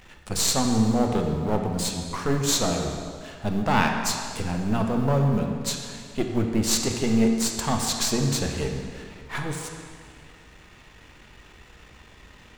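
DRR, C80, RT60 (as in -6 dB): 2.5 dB, 5.0 dB, 2.1 s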